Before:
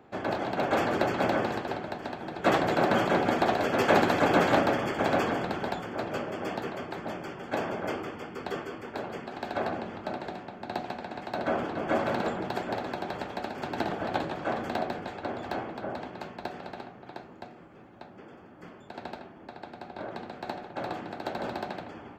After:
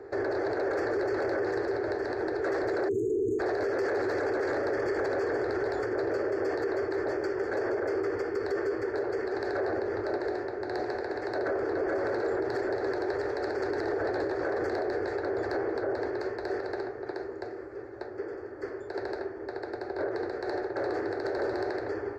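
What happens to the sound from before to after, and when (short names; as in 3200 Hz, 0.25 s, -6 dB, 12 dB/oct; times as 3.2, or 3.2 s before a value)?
2.88–3.4 spectral delete 470–6300 Hz
whole clip: EQ curve 110 Hz 0 dB, 180 Hz -25 dB, 400 Hz +12 dB, 690 Hz -3 dB, 1100 Hz -5 dB, 1800 Hz +4 dB, 3100 Hz -23 dB, 4500 Hz +2 dB, 13000 Hz -14 dB; limiter -29.5 dBFS; gain +7 dB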